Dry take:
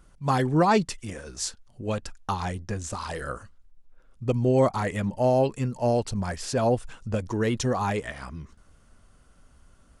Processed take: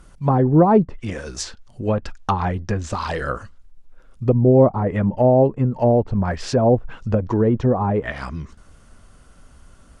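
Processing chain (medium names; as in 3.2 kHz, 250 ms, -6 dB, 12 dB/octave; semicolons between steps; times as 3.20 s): low-pass that closes with the level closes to 710 Hz, closed at -22 dBFS; trim +8.5 dB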